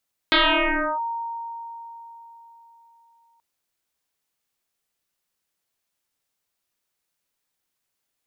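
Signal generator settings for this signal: FM tone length 3.08 s, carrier 927 Hz, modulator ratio 0.34, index 9.8, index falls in 0.67 s linear, decay 4.02 s, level -13.5 dB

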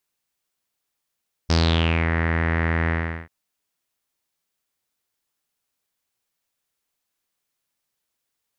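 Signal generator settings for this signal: synth note saw E2 12 dB/oct, low-pass 1900 Hz, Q 5.6, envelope 1.5 oct, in 0.60 s, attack 16 ms, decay 0.56 s, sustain -4.5 dB, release 0.39 s, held 1.40 s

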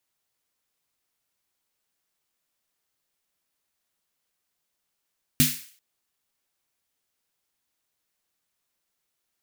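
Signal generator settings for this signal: snare drum length 0.39 s, tones 150 Hz, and 250 Hz, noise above 1800 Hz, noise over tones 0 dB, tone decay 0.25 s, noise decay 0.49 s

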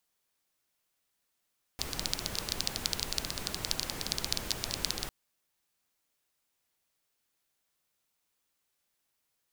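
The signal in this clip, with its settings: rain from filtered ticks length 3.30 s, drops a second 14, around 4500 Hz, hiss -2 dB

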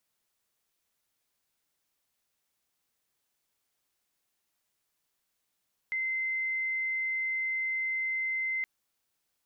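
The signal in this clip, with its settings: tone sine 2070 Hz -28.5 dBFS 2.72 s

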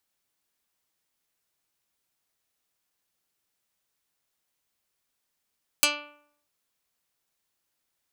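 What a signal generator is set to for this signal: plucked string D4, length 0.64 s, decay 0.66 s, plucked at 0.16, dark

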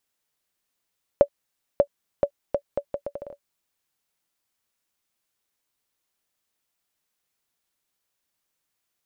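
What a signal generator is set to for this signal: bouncing ball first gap 0.59 s, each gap 0.73, 570 Hz, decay 74 ms -4 dBFS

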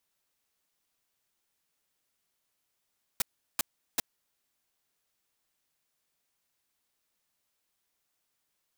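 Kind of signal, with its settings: noise bursts white, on 0.02 s, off 0.37 s, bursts 3, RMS -26.5 dBFS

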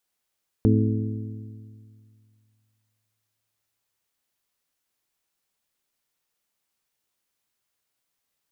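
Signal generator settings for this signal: metal hit bell, length 4.87 s, lowest mode 108 Hz, modes 5, decay 2.37 s, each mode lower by 2 dB, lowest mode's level -17 dB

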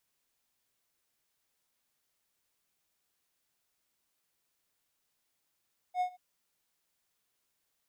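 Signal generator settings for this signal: ADSR triangle 727 Hz, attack 68 ms, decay 88 ms, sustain -23.5 dB, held 0.21 s, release 22 ms -24 dBFS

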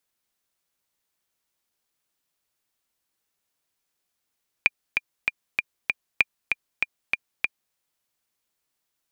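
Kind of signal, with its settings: metronome 194 bpm, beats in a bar 5, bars 2, 2400 Hz, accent 5 dB -3.5 dBFS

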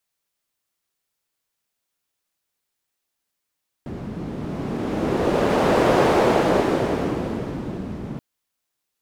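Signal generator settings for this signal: wind-like swept noise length 4.33 s, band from 200 Hz, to 510 Hz, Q 1.2, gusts 1, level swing 15 dB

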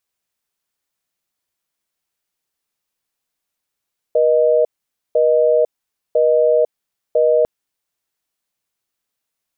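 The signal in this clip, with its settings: call progress tone busy tone, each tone -13.5 dBFS 3.30 s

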